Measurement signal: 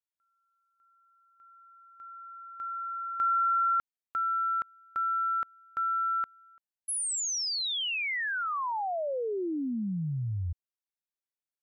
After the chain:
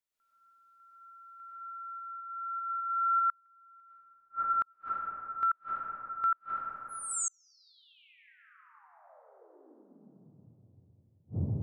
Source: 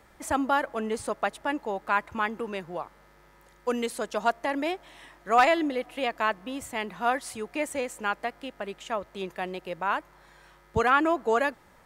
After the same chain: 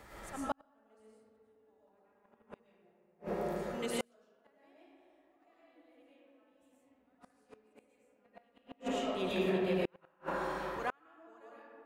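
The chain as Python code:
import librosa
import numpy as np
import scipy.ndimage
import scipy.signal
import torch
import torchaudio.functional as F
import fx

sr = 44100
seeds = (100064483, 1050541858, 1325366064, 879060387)

y = fx.auto_swell(x, sr, attack_ms=606.0)
y = fx.rev_freeverb(y, sr, rt60_s=3.5, hf_ratio=0.3, predelay_ms=70, drr_db=-10.0)
y = fx.gate_flip(y, sr, shuts_db=-23.0, range_db=-40)
y = F.gain(torch.from_numpy(y), 1.5).numpy()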